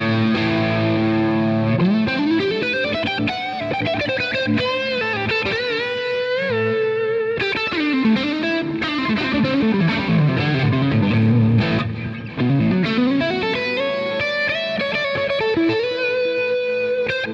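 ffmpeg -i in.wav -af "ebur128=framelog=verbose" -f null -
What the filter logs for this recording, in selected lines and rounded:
Integrated loudness:
  I:         -19.2 LUFS
  Threshold: -29.2 LUFS
Loudness range:
  LRA:         2.2 LU
  Threshold: -39.3 LUFS
  LRA low:   -20.2 LUFS
  LRA high:  -18.0 LUFS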